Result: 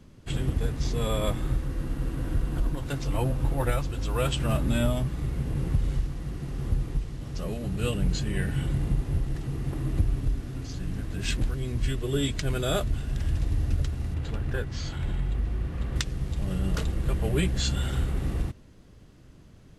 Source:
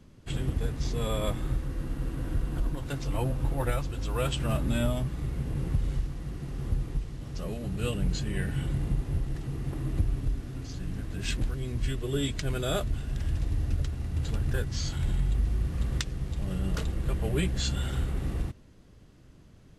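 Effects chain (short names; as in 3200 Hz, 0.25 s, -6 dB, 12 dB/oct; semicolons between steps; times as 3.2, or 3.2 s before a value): 14.14–15.96 tone controls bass -4 dB, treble -10 dB; gain +2.5 dB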